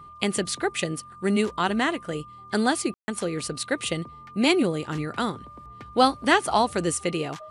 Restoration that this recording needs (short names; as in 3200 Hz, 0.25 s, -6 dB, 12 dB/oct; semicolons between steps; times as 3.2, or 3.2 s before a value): notch 1200 Hz, Q 30; room tone fill 2.94–3.08